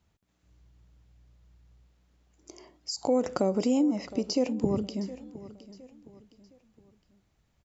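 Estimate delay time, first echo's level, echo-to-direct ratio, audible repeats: 0.714 s, -17.0 dB, -16.5 dB, 3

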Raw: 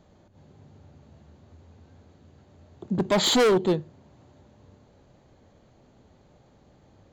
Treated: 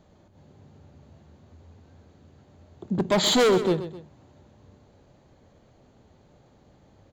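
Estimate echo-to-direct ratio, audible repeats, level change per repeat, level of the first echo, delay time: -11.5 dB, 2, -7.5 dB, -12.0 dB, 0.129 s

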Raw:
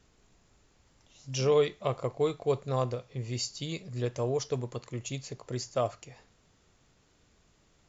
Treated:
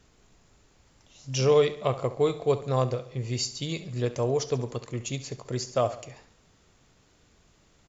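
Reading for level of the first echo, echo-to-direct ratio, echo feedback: -15.5 dB, -14.0 dB, 51%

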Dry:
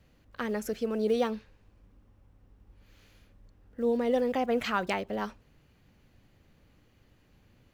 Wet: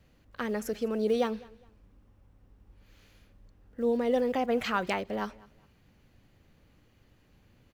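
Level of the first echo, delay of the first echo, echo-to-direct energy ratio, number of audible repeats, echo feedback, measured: -23.0 dB, 0.205 s, -22.5 dB, 2, 30%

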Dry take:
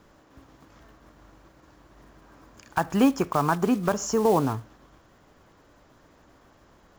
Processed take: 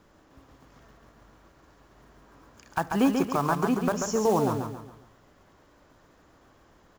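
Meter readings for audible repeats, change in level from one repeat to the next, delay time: 4, -8.0 dB, 0.138 s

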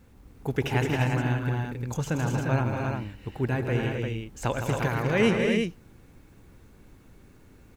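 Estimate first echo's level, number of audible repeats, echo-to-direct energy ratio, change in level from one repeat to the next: -16.0 dB, 5, -0.5 dB, no steady repeat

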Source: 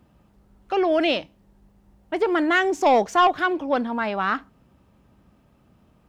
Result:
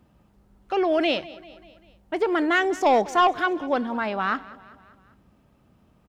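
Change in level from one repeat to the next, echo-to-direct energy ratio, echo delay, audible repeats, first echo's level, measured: -5.0 dB, -18.0 dB, 0.196 s, 3, -19.5 dB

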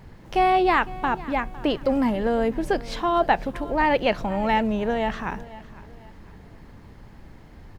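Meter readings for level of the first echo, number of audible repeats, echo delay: -19.0 dB, 2, 0.506 s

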